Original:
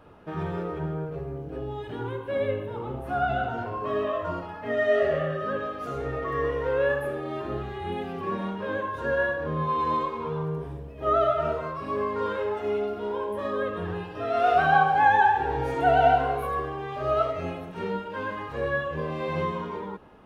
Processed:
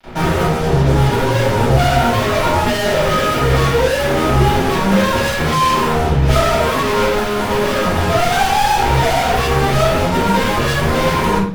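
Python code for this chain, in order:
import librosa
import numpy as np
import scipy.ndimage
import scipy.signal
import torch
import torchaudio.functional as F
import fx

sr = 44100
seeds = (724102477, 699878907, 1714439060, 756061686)

y = fx.stretch_vocoder(x, sr, factor=0.57)
y = fx.fuzz(y, sr, gain_db=49.0, gate_db=-48.0)
y = fx.room_shoebox(y, sr, seeds[0], volume_m3=360.0, walls='furnished', distance_m=7.4)
y = F.gain(torch.from_numpy(y), -12.0).numpy()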